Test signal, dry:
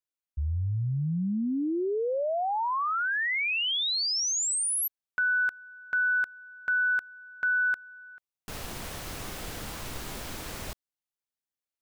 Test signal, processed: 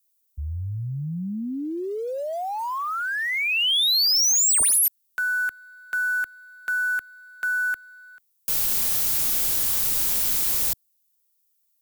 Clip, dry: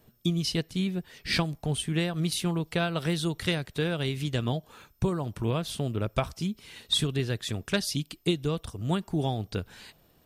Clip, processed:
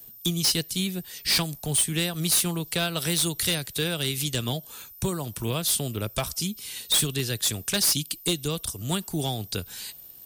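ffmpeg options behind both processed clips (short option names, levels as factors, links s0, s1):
-filter_complex "[0:a]aemphasis=mode=production:type=75fm,acrossover=split=130|520|3200[s0][s1][s2][s3];[s2]acrusher=bits=5:mode=log:mix=0:aa=0.000001[s4];[s3]acontrast=51[s5];[s0][s1][s4][s5]amix=inputs=4:normalize=0,asoftclip=type=hard:threshold=0.119"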